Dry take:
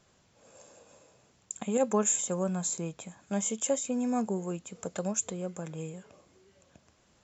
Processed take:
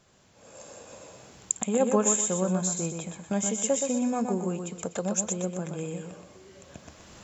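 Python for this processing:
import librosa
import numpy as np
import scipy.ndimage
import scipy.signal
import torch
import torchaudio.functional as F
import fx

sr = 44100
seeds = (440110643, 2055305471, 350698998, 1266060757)

y = fx.recorder_agc(x, sr, target_db=-24.0, rise_db_per_s=8.1, max_gain_db=30)
y = fx.echo_feedback(y, sr, ms=123, feedback_pct=33, wet_db=-5.5)
y = y * librosa.db_to_amplitude(2.5)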